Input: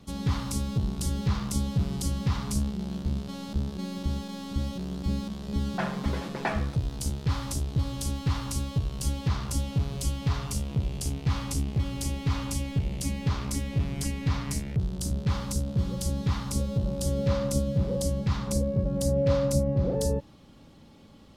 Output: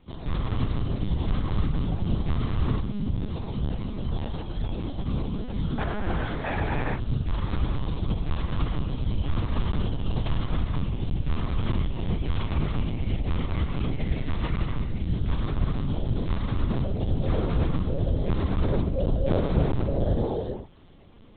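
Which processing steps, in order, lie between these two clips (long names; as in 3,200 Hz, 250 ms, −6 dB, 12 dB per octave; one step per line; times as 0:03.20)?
reverb reduction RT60 0.63 s
reverb whose tail is shaped and stops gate 490 ms flat, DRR −7 dB
linear-prediction vocoder at 8 kHz pitch kept
level −4 dB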